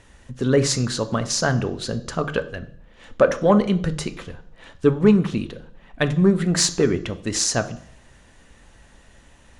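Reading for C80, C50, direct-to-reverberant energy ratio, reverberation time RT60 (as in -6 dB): 18.5 dB, 15.0 dB, 9.5 dB, 0.60 s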